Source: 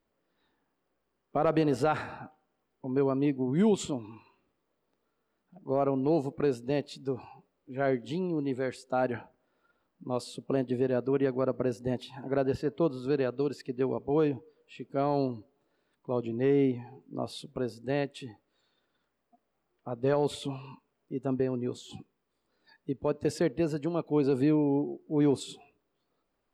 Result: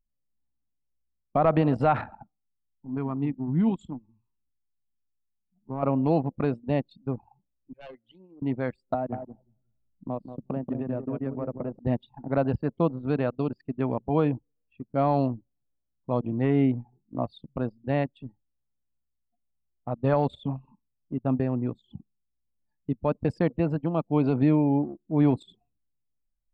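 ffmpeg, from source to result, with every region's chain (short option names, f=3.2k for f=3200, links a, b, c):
-filter_complex "[0:a]asettb=1/sr,asplit=3[a][b][c];[a]atrim=end=2.234[d];[b]atrim=start=2.23:end=5.83,asetpts=PTS-STARTPTS,afade=t=in:d=0.004:c=qsin,afade=t=out:st=3.596:d=0.004:c=qsin,equalizer=f=570:t=o:w=0.34:g=-14.5,flanger=delay=2.6:depth=7.3:regen=87:speed=1.3:shape=triangular[e];[c]atrim=start=5.826[f];[d][e]acrossfade=d=0.004:c1=hsin:c2=qsin[g];[g][f]acrossfade=d=0.004:c1=qsin:c2=hsin,asettb=1/sr,asplit=3[h][i][j];[h]atrim=end=7.734[k];[i]atrim=start=7.73:end=8.42,asetpts=PTS-STARTPTS,afade=t=in:d=0.004:c=qsin,afade=t=out:st=0.686:d=0.004:c=qsin,bandpass=f=2.5k:t=q:w=0.67,aeval=exprs='0.0211*(abs(mod(val(0)/0.0211+3,4)-2)-1)':c=same[l];[j]atrim=start=8.416[m];[k][l]acrossfade=d=0.004:c1=hsin:c2=qsin[n];[n][m]acrossfade=d=0.004:c1=qsin:c2=hsin,asettb=1/sr,asplit=3[o][p][q];[o]atrim=end=8.944[r];[p]atrim=start=8.94:end=11.79,asetpts=PTS-STARTPTS,afade=t=in:d=0.004:c=qsin,afade=t=out:st=2.846:d=0.004:c=qsin,acrossover=split=140|810[s][t][u];[s]acompressor=threshold=-51dB:ratio=4[v];[t]acompressor=threshold=-33dB:ratio=4[w];[u]acompressor=threshold=-52dB:ratio=4[x];[v][w][x]amix=inputs=3:normalize=0,asplit=2[y][z];[z]adelay=183,lowpass=f=890:p=1,volume=-4dB,asplit=2[aa][ab];[ab]adelay=183,lowpass=f=890:p=1,volume=0.31,asplit=2[ac][ad];[ad]adelay=183,lowpass=f=890:p=1,volume=0.31,asplit=2[ae][af];[af]adelay=183,lowpass=f=890:p=1,volume=0.31[ag];[y][aa][ac][ae][ag]amix=inputs=5:normalize=0,atrim=end_sample=125685[ah];[q]atrim=start=11.786[ai];[r][ah]acrossfade=d=0.004:c1=hsin:c2=qsin[aj];[aj][ai]acrossfade=d=0.004:c1=qsin:c2=hsin,anlmdn=3.98,acrossover=split=2500[ak][al];[al]acompressor=threshold=-57dB:ratio=4:attack=1:release=60[am];[ak][am]amix=inputs=2:normalize=0,equalizer=f=400:t=o:w=0.67:g=-12,equalizer=f=1.6k:t=o:w=0.67:g=-5,equalizer=f=6.3k:t=o:w=0.67:g=-10,volume=8.5dB"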